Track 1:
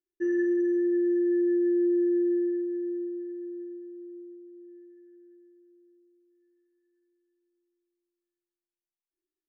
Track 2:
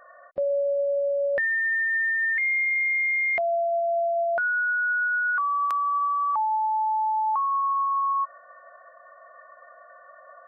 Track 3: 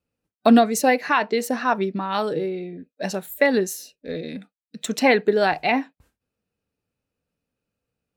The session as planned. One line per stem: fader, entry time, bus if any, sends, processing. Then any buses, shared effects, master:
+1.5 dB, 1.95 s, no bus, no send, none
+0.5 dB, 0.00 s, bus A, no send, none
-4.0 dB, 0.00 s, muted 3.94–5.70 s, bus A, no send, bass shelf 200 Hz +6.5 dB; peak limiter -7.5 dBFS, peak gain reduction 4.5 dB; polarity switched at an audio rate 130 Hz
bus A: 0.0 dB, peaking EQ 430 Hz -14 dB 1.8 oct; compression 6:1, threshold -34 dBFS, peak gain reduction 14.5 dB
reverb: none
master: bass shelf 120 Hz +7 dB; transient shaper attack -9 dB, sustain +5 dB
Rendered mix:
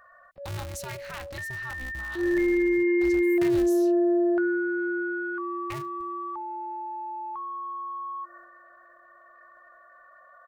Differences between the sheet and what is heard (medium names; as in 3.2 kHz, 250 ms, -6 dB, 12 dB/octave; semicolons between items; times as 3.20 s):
nothing